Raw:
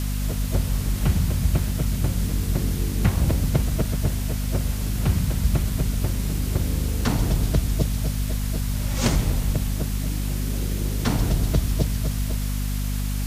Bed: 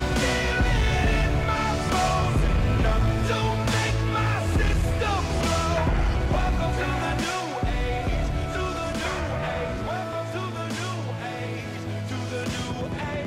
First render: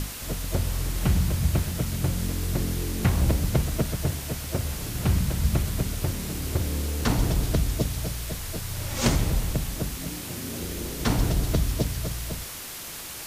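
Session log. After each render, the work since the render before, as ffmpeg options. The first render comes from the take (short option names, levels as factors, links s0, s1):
-af "bandreject=f=50:t=h:w=6,bandreject=f=100:t=h:w=6,bandreject=f=150:t=h:w=6,bandreject=f=200:t=h:w=6,bandreject=f=250:t=h:w=6"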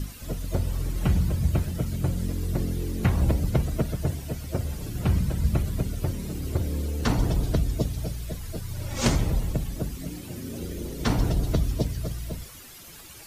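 -af "afftdn=nr=12:nf=-38"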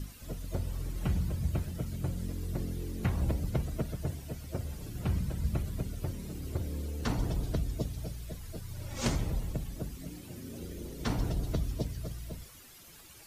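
-af "volume=0.398"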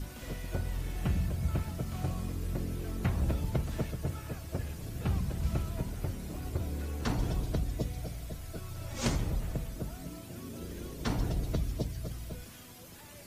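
-filter_complex "[1:a]volume=0.0631[s0];[0:a][s0]amix=inputs=2:normalize=0"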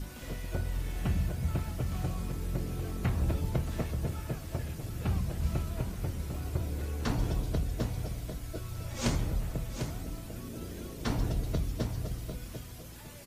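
-filter_complex "[0:a]asplit=2[s0][s1];[s1]adelay=25,volume=0.237[s2];[s0][s2]amix=inputs=2:normalize=0,aecho=1:1:748:0.355"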